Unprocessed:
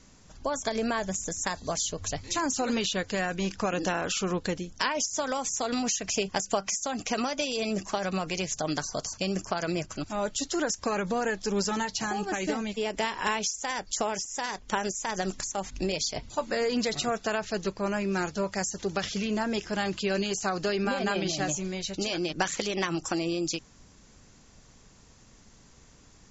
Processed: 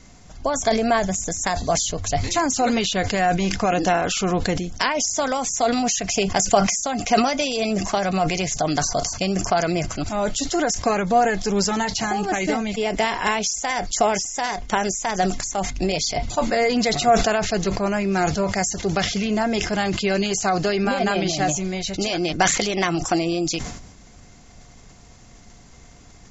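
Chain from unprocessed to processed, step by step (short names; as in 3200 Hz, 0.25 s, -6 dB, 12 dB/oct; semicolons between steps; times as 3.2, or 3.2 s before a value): low shelf 150 Hz +4.5 dB; small resonant body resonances 710/2100 Hz, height 12 dB, ringing for 65 ms; sustainer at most 60 dB/s; gain +5.5 dB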